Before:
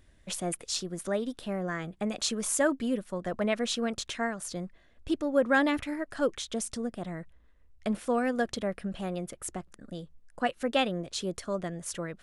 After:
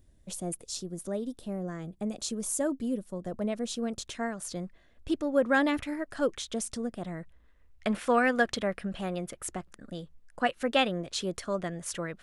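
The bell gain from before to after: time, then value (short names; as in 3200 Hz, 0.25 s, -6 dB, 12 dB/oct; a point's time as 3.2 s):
bell 1900 Hz 2.5 oct
3.64 s -13 dB
4.52 s -1 dB
7.21 s -1 dB
8.15 s +10.5 dB
8.89 s +3 dB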